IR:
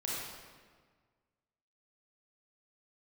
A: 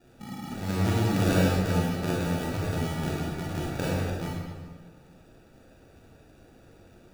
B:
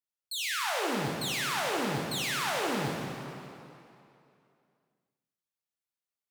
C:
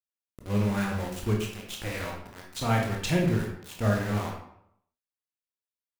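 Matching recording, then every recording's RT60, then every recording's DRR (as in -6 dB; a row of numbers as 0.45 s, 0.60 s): A; 1.6 s, 2.8 s, 0.75 s; -6.0 dB, -2.0 dB, -1.0 dB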